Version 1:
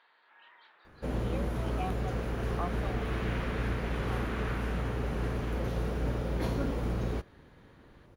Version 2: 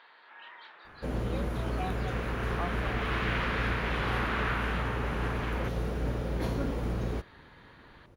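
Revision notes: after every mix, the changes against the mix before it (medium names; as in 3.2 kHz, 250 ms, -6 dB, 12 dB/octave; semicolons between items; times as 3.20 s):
first sound +9.0 dB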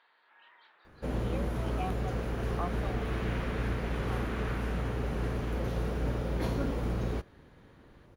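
first sound -10.5 dB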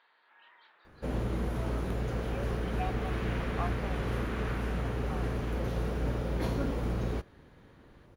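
speech: entry +1.00 s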